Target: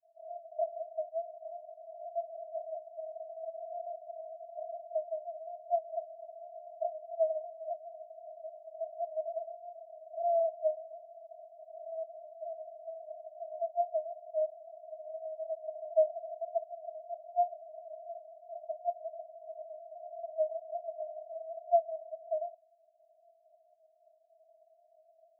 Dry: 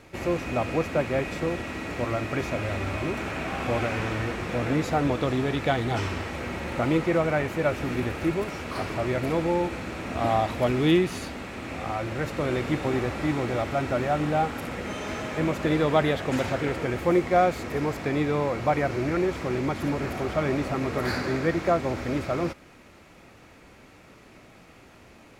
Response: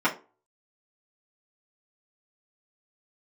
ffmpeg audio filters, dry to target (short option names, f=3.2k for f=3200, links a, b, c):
-af "asuperpass=centerf=660:order=20:qfactor=7.5"